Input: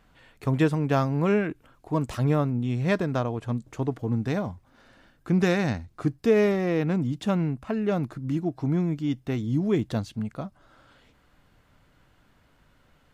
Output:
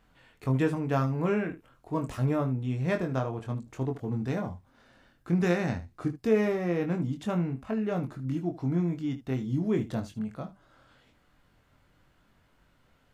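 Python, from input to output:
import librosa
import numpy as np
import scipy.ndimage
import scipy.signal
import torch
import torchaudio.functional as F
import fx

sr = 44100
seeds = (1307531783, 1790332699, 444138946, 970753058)

p1 = fx.dynamic_eq(x, sr, hz=4100.0, q=1.6, threshold_db=-51.0, ratio=4.0, max_db=-5)
p2 = p1 + fx.room_early_taps(p1, sr, ms=(23, 76), db=(-5.0, -14.5), dry=0)
y = p2 * librosa.db_to_amplitude(-5.0)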